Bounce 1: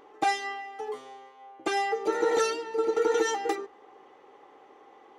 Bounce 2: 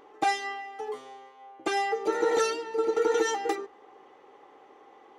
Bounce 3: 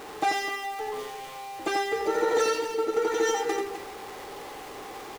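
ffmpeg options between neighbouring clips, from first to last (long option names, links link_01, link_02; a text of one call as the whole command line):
ffmpeg -i in.wav -af anull out.wav
ffmpeg -i in.wav -af "aeval=exprs='val(0)+0.5*0.015*sgn(val(0))':channel_layout=same,aecho=1:1:87.46|253.6:0.562|0.282,volume=-1dB" out.wav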